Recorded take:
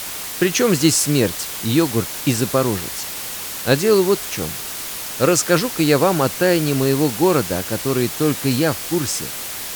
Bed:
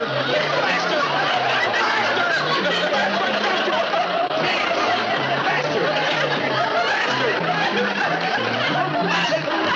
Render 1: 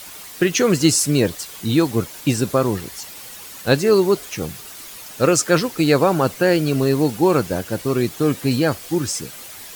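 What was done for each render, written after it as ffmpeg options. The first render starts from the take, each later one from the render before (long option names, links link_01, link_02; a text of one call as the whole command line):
ffmpeg -i in.wav -af "afftdn=noise_reduction=10:noise_floor=-29" out.wav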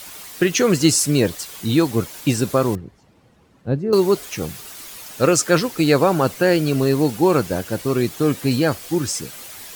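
ffmpeg -i in.wav -filter_complex "[0:a]asettb=1/sr,asplit=3[link_01][link_02][link_03];[link_01]atrim=end=2.754[link_04];[link_02]atrim=start=2.75:end=3.93,asetpts=PTS-STARTPTS,afade=type=in:duration=0.004:curve=qsin,afade=type=out:start_time=1.176:duration=0.004:curve=qsin,bandpass=frequency=120:width_type=q:width=0.61[link_05];[link_03]atrim=start=3.926[link_06];[link_04][link_05]acrossfade=duration=0.004:curve1=hsin:curve2=qsin[link_07];[link_07][link_06]acrossfade=duration=0.004:curve1=qsin:curve2=hsin" out.wav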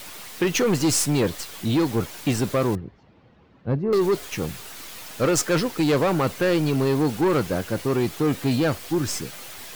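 ffmpeg -i in.wav -filter_complex "[0:a]acrossover=split=4700[link_01][link_02];[link_02]acrusher=bits=4:dc=4:mix=0:aa=0.000001[link_03];[link_01][link_03]amix=inputs=2:normalize=0,asoftclip=type=tanh:threshold=-15.5dB" out.wav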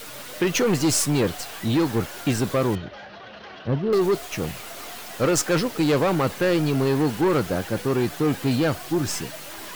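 ffmpeg -i in.wav -i bed.wav -filter_complex "[1:a]volume=-21.5dB[link_01];[0:a][link_01]amix=inputs=2:normalize=0" out.wav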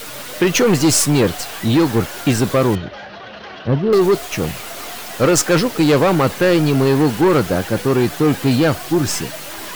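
ffmpeg -i in.wav -af "volume=7dB" out.wav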